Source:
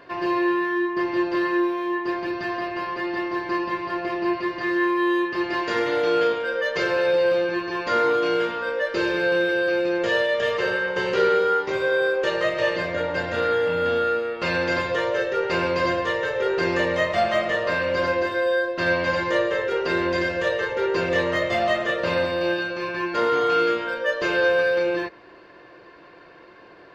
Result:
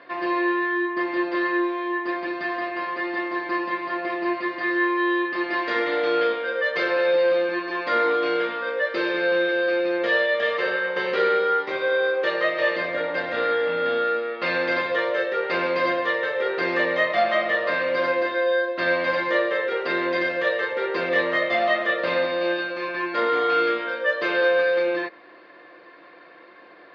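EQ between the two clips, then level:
loudspeaker in its box 360–3,800 Hz, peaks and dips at 410 Hz −9 dB, 620 Hz −4 dB, 930 Hz −8 dB, 2,800 Hz −8 dB
parametric band 1,500 Hz −7 dB 0.21 octaves
+5.0 dB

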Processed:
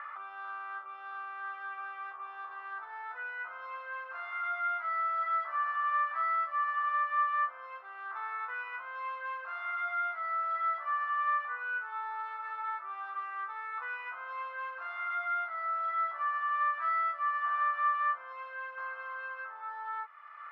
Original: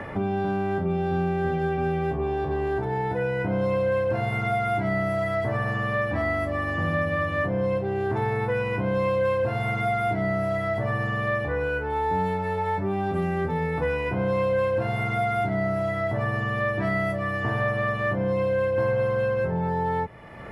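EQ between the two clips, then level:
four-pole ladder high-pass 1,200 Hz, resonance 85%
high-frequency loss of the air 170 metres
+2.0 dB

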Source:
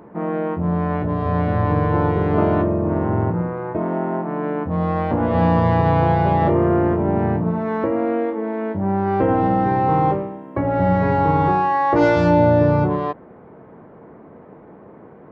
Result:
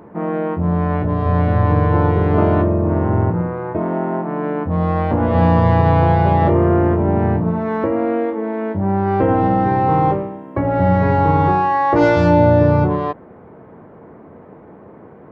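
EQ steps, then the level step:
parametric band 88 Hz +5.5 dB 0.42 octaves
+2.0 dB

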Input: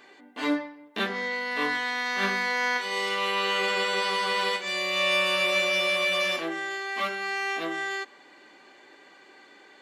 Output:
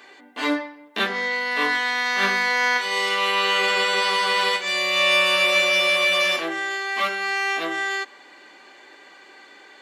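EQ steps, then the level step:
high-pass filter 110 Hz
low-shelf EQ 410 Hz −7 dB
+6.5 dB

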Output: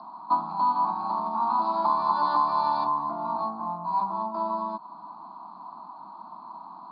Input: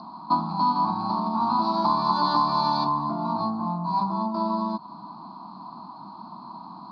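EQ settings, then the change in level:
high-pass filter 130 Hz
three-way crossover with the lows and the highs turned down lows −13 dB, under 430 Hz, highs −20 dB, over 3,700 Hz
high-shelf EQ 3,400 Hz −7 dB
0.0 dB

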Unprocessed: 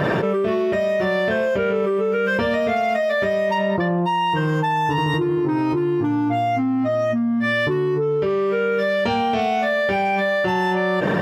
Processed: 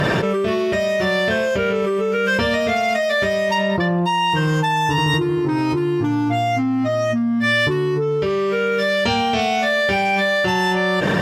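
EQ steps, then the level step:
low-shelf EQ 110 Hz +11 dB
parametric band 7,000 Hz +12.5 dB 2.9 octaves
−1.0 dB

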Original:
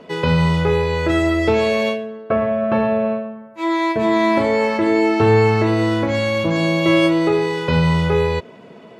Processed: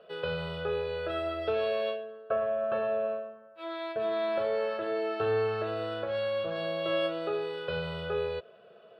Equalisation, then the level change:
bass and treble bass −13 dB, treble −10 dB
phaser with its sweep stopped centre 1,400 Hz, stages 8
−8.5 dB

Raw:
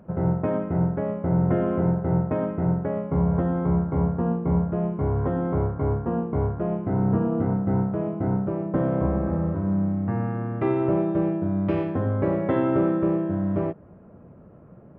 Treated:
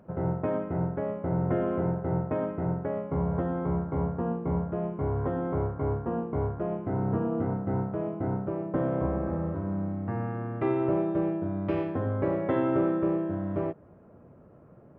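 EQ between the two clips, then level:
low-shelf EQ 78 Hz −6 dB
parametric band 190 Hz −5 dB 0.43 octaves
−3.0 dB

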